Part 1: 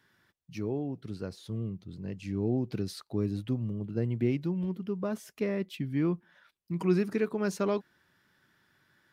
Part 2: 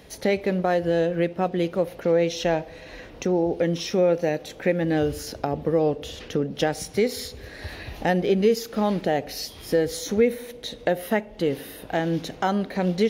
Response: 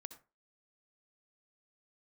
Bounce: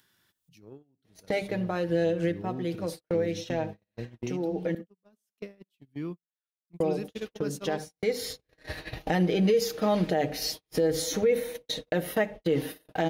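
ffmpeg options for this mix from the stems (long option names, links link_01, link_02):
-filter_complex "[0:a]aexciter=amount=1.8:drive=7.8:freq=2800,volume=-11dB,asplit=3[link_01][link_02][link_03];[link_02]volume=-5.5dB[link_04];[1:a]bandreject=frequency=50:width_type=h:width=6,bandreject=frequency=100:width_type=h:width=6,bandreject=frequency=150:width_type=h:width=6,bandreject=frequency=200:width_type=h:width=6,bandreject=frequency=250:width_type=h:width=6,bandreject=frequency=300:width_type=h:width=6,aecho=1:1:6.4:0.62,adelay=1050,volume=-2.5dB,asplit=3[link_05][link_06][link_07];[link_05]atrim=end=4.75,asetpts=PTS-STARTPTS,afade=type=out:start_time=4.746:duration=0.004:curve=hsin[link_08];[link_06]atrim=start=4.75:end=6.8,asetpts=PTS-STARTPTS,volume=0[link_09];[link_07]atrim=start=6.8,asetpts=PTS-STARTPTS,afade=type=in:duration=0.004:curve=hsin[link_10];[link_08][link_09][link_10]concat=n=3:v=0:a=1,asplit=2[link_11][link_12];[link_12]volume=-7.5dB[link_13];[link_03]apad=whole_len=624286[link_14];[link_11][link_14]sidechaincompress=threshold=-51dB:ratio=8:attack=49:release=672[link_15];[2:a]atrim=start_sample=2205[link_16];[link_04][link_13]amix=inputs=2:normalize=0[link_17];[link_17][link_16]afir=irnorm=-1:irlink=0[link_18];[link_01][link_15][link_18]amix=inputs=3:normalize=0,agate=range=-51dB:threshold=-35dB:ratio=16:detection=peak,acompressor=mode=upward:threshold=-28dB:ratio=2.5,alimiter=limit=-16dB:level=0:latency=1:release=57"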